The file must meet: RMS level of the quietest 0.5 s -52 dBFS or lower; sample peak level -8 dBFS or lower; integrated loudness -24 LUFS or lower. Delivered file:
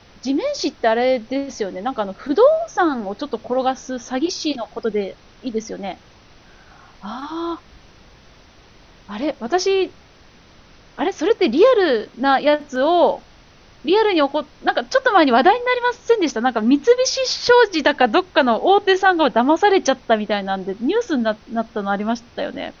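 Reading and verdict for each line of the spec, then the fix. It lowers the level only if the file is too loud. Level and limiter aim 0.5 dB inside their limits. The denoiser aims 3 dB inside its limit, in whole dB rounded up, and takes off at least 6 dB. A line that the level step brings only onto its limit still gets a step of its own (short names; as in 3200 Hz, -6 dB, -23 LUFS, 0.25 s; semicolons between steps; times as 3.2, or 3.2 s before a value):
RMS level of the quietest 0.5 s -48 dBFS: fail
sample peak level -3.0 dBFS: fail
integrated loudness -18.5 LUFS: fail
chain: gain -6 dB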